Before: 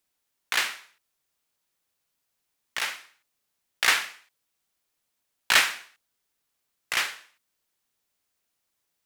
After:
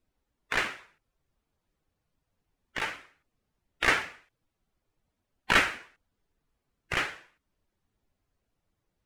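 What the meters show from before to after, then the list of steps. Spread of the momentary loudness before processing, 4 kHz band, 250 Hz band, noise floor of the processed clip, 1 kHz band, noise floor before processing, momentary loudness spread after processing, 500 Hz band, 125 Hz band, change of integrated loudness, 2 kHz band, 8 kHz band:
19 LU, −7.5 dB, +10.0 dB, −83 dBFS, 0.0 dB, −79 dBFS, 19 LU, +5.0 dB, can't be measured, −3.5 dB, −2.0 dB, −11.0 dB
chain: spectral magnitudes quantised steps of 15 dB
spectral tilt −4.5 dB per octave
level +2 dB

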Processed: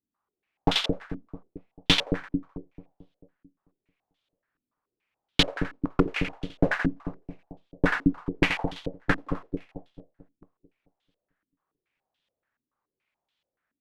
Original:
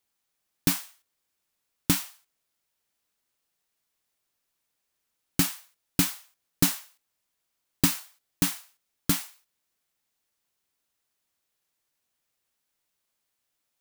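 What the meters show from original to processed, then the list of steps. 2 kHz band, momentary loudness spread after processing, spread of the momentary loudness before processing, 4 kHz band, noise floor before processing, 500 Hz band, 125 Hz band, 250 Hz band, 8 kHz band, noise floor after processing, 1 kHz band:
+9.0 dB, 21 LU, 15 LU, +6.5 dB, −80 dBFS, +13.0 dB, +3.0 dB, +3.5 dB, −14.5 dB, below −85 dBFS, +8.0 dB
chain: harmonic generator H 5 −19 dB, 7 −20 dB, 8 −9 dB, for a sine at −6 dBFS
on a send: echo with a time of its own for lows and highs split 620 Hz, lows 221 ms, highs 85 ms, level −4 dB
on the sum: low-pass on a step sequencer 7 Hz 270–3,400 Hz
level −1 dB

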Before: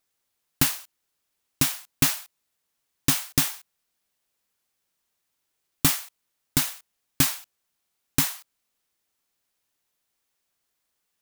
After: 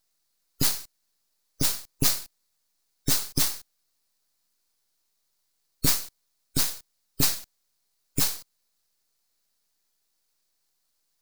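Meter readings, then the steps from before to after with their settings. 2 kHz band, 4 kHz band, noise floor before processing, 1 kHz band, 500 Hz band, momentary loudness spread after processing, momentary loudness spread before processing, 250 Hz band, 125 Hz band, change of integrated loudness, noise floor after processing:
−6.0 dB, 0.0 dB, −78 dBFS, −4.5 dB, +1.5 dB, 11 LU, 13 LU, −4.0 dB, −3.0 dB, −1.5 dB, −75 dBFS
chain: gate on every frequency bin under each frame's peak −15 dB strong
high shelf with overshoot 3,500 Hz +6.5 dB, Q 3
half-wave rectification

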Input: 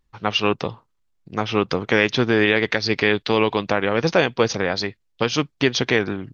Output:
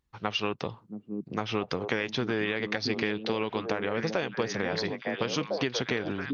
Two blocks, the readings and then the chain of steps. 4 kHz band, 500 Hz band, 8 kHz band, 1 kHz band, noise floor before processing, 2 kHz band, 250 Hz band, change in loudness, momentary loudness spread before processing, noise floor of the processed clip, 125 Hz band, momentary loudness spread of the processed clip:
−9.5 dB, −10.0 dB, can't be measured, −9.5 dB, −69 dBFS, −10.5 dB, −9.0 dB, −10.0 dB, 8 LU, −59 dBFS, −9.5 dB, 5 LU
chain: high-pass filter 43 Hz
on a send: echo through a band-pass that steps 677 ms, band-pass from 220 Hz, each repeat 1.4 octaves, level −3 dB
on the sum: downward compressor, threshold −20 dBFS, peak gain reduction 9 dB
level −5 dB

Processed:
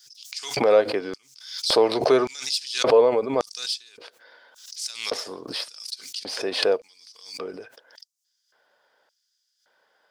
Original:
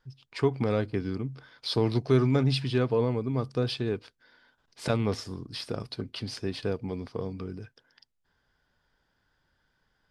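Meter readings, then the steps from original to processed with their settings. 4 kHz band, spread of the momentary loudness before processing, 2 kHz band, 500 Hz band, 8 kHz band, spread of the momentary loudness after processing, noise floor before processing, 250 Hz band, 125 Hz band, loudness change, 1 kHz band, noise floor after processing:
+9.5 dB, 13 LU, +7.0 dB, +8.0 dB, +15.0 dB, 17 LU, −75 dBFS, −2.5 dB, −17.0 dB, +6.0 dB, +9.0 dB, −75 dBFS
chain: stylus tracing distortion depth 0.021 ms
auto-filter high-pass square 0.88 Hz 550–5,800 Hz
background raised ahead of every attack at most 82 dB per second
level +7 dB

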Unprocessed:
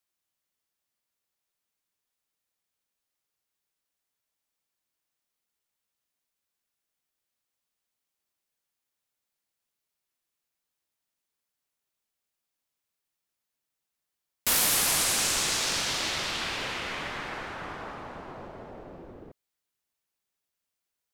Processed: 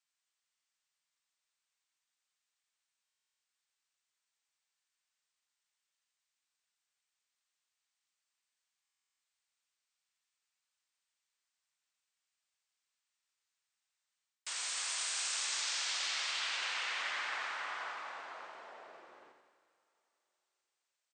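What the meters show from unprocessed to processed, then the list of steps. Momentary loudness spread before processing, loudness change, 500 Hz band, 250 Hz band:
21 LU, −9.5 dB, −15.0 dB, below −25 dB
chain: high-pass filter 1,100 Hz 12 dB per octave
reversed playback
downward compressor 6 to 1, threshold −35 dBFS, peak gain reduction 13 dB
reversed playback
linear-phase brick-wall low-pass 9,000 Hz
on a send: repeating echo 88 ms, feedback 58%, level −7 dB
on the sum: dense smooth reverb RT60 3.4 s, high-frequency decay 0.95×, DRR 15 dB
buffer that repeats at 0:03.04/0:08.82, samples 1,024, times 15

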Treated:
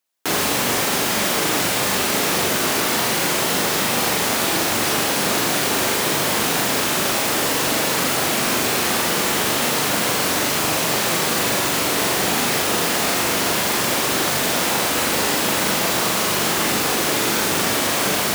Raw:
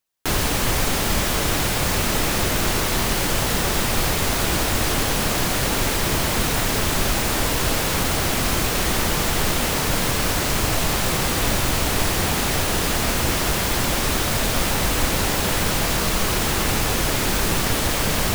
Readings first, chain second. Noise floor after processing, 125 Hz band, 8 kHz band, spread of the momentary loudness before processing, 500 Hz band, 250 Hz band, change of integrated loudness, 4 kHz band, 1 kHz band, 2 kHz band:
−21 dBFS, −6.5 dB, +3.0 dB, 0 LU, +3.0 dB, +1.0 dB, +2.5 dB, +3.0 dB, +3.0 dB, +3.0 dB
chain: high-pass filter 210 Hz 12 dB per octave
flutter between parallel walls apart 7.1 metres, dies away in 0.47 s
level +1.5 dB

